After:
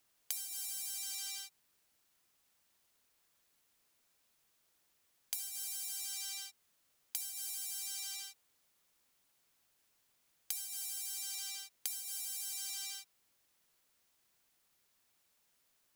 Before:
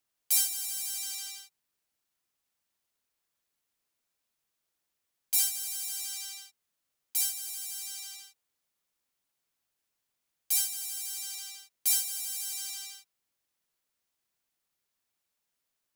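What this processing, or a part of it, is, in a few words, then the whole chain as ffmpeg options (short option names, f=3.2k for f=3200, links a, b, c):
serial compression, peaks first: -af "acompressor=threshold=-36dB:ratio=6,acompressor=threshold=-47dB:ratio=2.5,volume=7.5dB"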